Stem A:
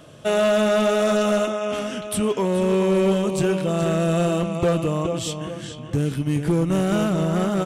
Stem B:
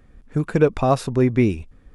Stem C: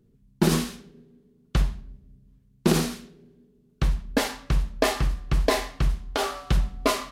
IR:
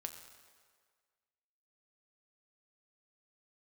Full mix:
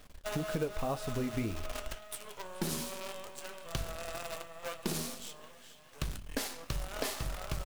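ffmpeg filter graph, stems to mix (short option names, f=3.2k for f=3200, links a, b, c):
-filter_complex "[0:a]highpass=f=600:w=0.5412,highpass=f=600:w=1.3066,volume=-11.5dB,asplit=2[a][b];[b]volume=-5.5dB[c];[1:a]bandreject=f=370:w=12,asubboost=boost=9:cutoff=60,acrusher=bits=5:mode=log:mix=0:aa=0.000001,volume=-1dB,asplit=2[d][e];[e]volume=-11dB[f];[2:a]aeval=exprs='if(lt(val(0),0),0.447*val(0),val(0))':c=same,highshelf=f=4.4k:g=11.5,adelay=2200,volume=-0.5dB,asplit=2[g][h];[h]volume=-20dB[i];[3:a]atrim=start_sample=2205[j];[c][f][i]amix=inputs=3:normalize=0[k];[k][j]afir=irnorm=-1:irlink=0[l];[a][d][g][l]amix=inputs=4:normalize=0,acrusher=bits=6:dc=4:mix=0:aa=0.000001,flanger=delay=6.6:depth=6:regen=-61:speed=1.9:shape=sinusoidal,acompressor=threshold=-33dB:ratio=4"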